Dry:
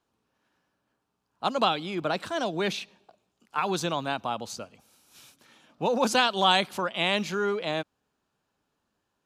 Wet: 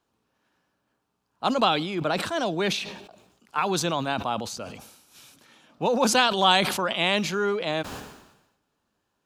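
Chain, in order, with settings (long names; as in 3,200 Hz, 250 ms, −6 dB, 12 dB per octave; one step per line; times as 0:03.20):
level that may fall only so fast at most 61 dB per second
level +2 dB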